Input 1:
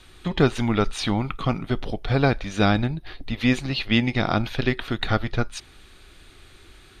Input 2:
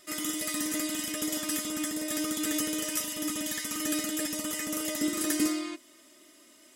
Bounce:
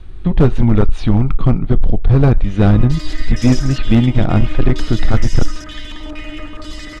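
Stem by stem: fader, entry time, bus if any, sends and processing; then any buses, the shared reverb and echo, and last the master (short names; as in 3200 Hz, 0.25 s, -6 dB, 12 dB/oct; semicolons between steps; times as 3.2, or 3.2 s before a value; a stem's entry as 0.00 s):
+1.5 dB, 0.00 s, no send, no echo send, tilt -4 dB/oct; hard clip -6 dBFS, distortion -10 dB
-12.0 dB, 2.20 s, no send, echo send -4.5 dB, AGC gain up to 11 dB; stepped low-pass 4.3 Hz 900–5500 Hz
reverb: off
echo: echo 0.184 s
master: dry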